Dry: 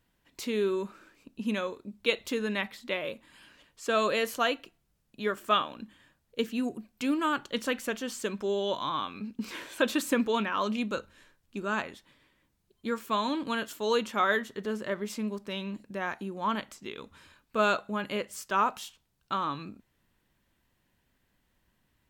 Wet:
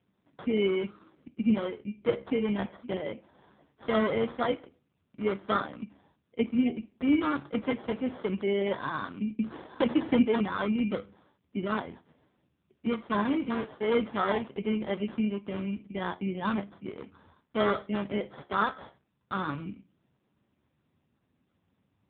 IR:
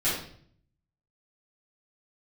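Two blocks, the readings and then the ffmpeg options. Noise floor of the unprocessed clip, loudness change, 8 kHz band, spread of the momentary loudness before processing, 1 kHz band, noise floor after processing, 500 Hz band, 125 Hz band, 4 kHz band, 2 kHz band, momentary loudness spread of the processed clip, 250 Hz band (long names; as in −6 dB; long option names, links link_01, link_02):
−75 dBFS, +0.5 dB, below −35 dB, 12 LU, −3.0 dB, −76 dBFS, +1.0 dB, +5.5 dB, −6.0 dB, −4.0 dB, 12 LU, +4.5 dB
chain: -filter_complex "[0:a]lowshelf=frequency=420:gain=9,acrusher=samples=17:mix=1:aa=0.000001,flanger=delay=9.9:depth=6.3:regen=70:speed=0.18:shape=triangular,asplit=2[link_01][link_02];[1:a]atrim=start_sample=2205,asetrate=48510,aresample=44100,lowpass=2900[link_03];[link_02][link_03]afir=irnorm=-1:irlink=0,volume=-33.5dB[link_04];[link_01][link_04]amix=inputs=2:normalize=0,volume=2.5dB" -ar 8000 -c:a libopencore_amrnb -b:a 5900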